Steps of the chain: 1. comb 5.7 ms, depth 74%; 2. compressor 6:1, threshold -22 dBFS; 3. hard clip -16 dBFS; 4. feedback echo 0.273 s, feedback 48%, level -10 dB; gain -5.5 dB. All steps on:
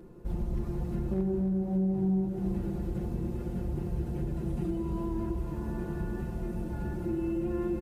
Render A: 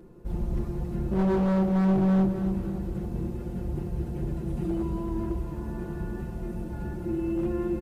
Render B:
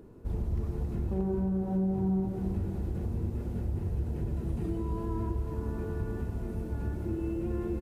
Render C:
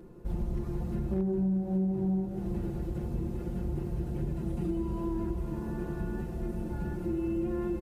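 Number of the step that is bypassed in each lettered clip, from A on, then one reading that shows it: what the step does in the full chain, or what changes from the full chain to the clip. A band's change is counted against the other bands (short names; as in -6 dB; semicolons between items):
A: 2, mean gain reduction 3.0 dB; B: 1, 125 Hz band +3.0 dB; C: 4, echo-to-direct -9.0 dB to none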